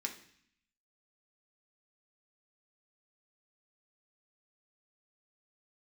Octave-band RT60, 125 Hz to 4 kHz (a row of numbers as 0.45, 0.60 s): 0.85, 0.85, 0.55, 0.65, 0.80, 0.75 s